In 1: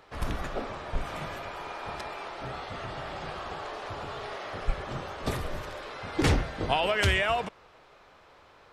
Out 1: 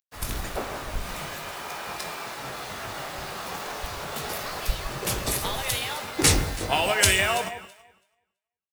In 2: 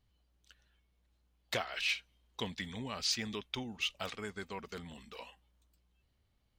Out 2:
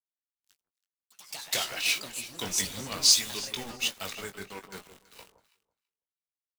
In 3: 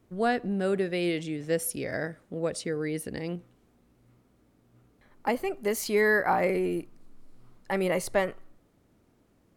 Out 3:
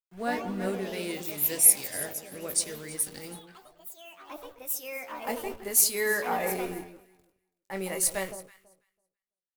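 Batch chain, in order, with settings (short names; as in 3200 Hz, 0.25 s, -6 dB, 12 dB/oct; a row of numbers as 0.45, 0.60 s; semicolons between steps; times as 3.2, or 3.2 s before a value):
pre-emphasis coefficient 0.8; notch 3200 Hz, Q 15; dynamic EQ 9400 Hz, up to +5 dB, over -53 dBFS, Q 1; in parallel at +0.5 dB: compressor, threshold -45 dBFS; on the sum: bit-crush 8-bit; doubler 21 ms -8 dB; on a send: echo with dull and thin repeats by turns 0.165 s, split 1100 Hz, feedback 53%, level -7 dB; on the sum: echoes that change speed 0.114 s, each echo +4 st, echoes 3, each echo -6 dB; three-band expander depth 70%; match loudness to -27 LUFS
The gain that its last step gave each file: +7.5, +7.0, +2.0 dB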